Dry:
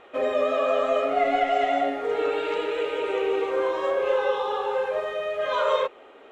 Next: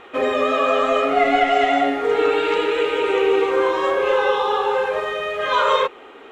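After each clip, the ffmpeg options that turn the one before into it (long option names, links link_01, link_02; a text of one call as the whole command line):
ffmpeg -i in.wav -af "equalizer=frequency=600:width=3.7:gain=-10,volume=9dB" out.wav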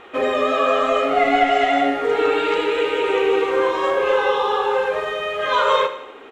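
ffmpeg -i in.wav -af "aecho=1:1:78|156|234|312|390:0.237|0.126|0.0666|0.0353|0.0187" out.wav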